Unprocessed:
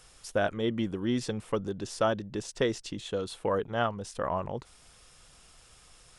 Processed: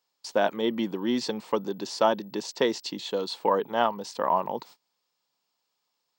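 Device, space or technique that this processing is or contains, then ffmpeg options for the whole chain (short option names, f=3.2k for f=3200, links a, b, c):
old television with a line whistle: -af "highpass=f=190:w=0.5412,highpass=f=190:w=1.3066,equalizer=f=920:t=q:w=4:g=10,equalizer=f=1.4k:t=q:w=4:g=-4,equalizer=f=4.4k:t=q:w=4:g=9,lowpass=f=7.5k:w=0.5412,lowpass=f=7.5k:w=1.3066,aeval=exprs='val(0)+0.001*sin(2*PI*15734*n/s)':c=same,agate=range=-26dB:threshold=-50dB:ratio=16:detection=peak,volume=3dB"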